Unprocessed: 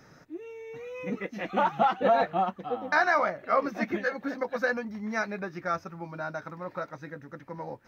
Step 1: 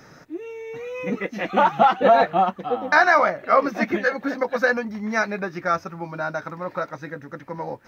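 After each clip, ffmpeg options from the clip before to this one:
-af "lowshelf=f=200:g=-3.5,volume=2.51"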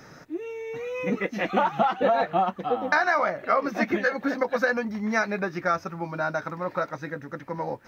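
-af "acompressor=threshold=0.112:ratio=5"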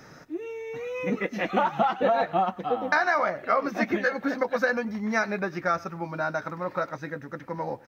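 -af "aecho=1:1:99:0.075,volume=0.891"

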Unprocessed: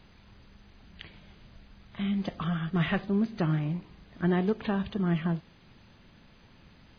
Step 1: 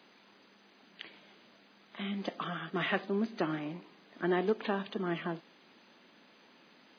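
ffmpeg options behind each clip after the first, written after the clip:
-af "highpass=f=250:w=0.5412,highpass=f=250:w=1.3066"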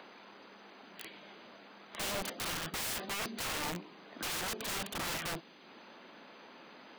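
-filter_complex "[0:a]equalizer=f=1800:t=o:w=0.34:g=-2,acrossover=split=390|1900[s0][s1][s2];[s1]acompressor=mode=upward:threshold=0.00251:ratio=2.5[s3];[s0][s3][s2]amix=inputs=3:normalize=0,aeval=exprs='(mod(59.6*val(0)+1,2)-1)/59.6':c=same,volume=1.5"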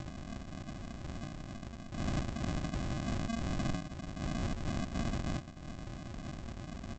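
-af "acompressor=threshold=0.00891:ratio=6,alimiter=level_in=6.31:limit=0.0631:level=0:latency=1:release=43,volume=0.158,aresample=16000,acrusher=samples=35:mix=1:aa=0.000001,aresample=44100,volume=3.76"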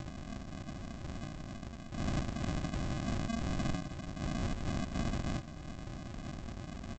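-af "aecho=1:1:243:0.178"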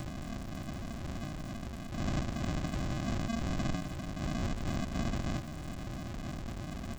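-af "aeval=exprs='val(0)+0.5*0.00794*sgn(val(0))':c=same"

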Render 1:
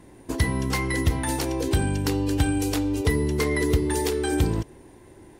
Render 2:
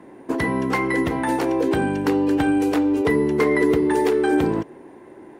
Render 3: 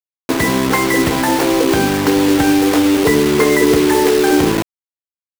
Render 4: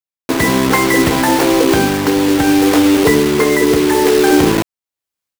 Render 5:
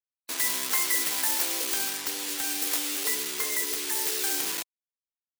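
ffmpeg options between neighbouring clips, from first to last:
-filter_complex "[0:a]acrossover=split=180 2300:gain=0.0708 1 0.158[s0][s1][s2];[s0][s1][s2]amix=inputs=3:normalize=0,volume=2.37"
-filter_complex "[0:a]asplit=2[s0][s1];[s1]alimiter=limit=0.168:level=0:latency=1:release=337,volume=0.841[s2];[s0][s2]amix=inputs=2:normalize=0,aeval=exprs='sgn(val(0))*max(abs(val(0))-0.0168,0)':c=same,acrusher=bits=3:mix=0:aa=0.000001,volume=1.5"
-af "dynaudnorm=f=220:g=3:m=6.31,volume=0.891"
-af "asoftclip=type=tanh:threshold=0.631,afftfilt=real='re*gte(hypot(re,im),0.0224)':imag='im*gte(hypot(re,im),0.0224)':win_size=1024:overlap=0.75,aderivative,volume=0.708"

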